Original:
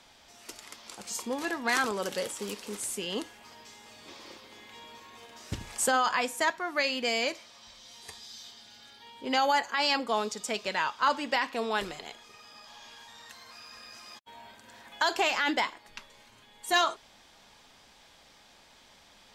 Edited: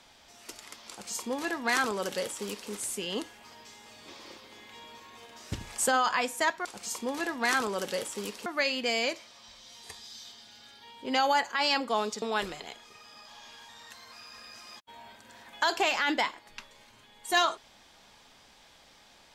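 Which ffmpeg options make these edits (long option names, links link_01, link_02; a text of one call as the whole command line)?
ffmpeg -i in.wav -filter_complex "[0:a]asplit=4[link_01][link_02][link_03][link_04];[link_01]atrim=end=6.652[link_05];[link_02]atrim=start=0.888:end=2.702[link_06];[link_03]atrim=start=6.648:end=10.412[link_07];[link_04]atrim=start=11.608[link_08];[link_05][link_06]acrossfade=duration=0.004:curve1=hsin:curve2=hsin[link_09];[link_09][link_07]acrossfade=duration=0.004:curve1=hsin:curve2=hsin[link_10];[link_10][link_08]acrossfade=duration=0.004:curve1=hsin:curve2=hsin" out.wav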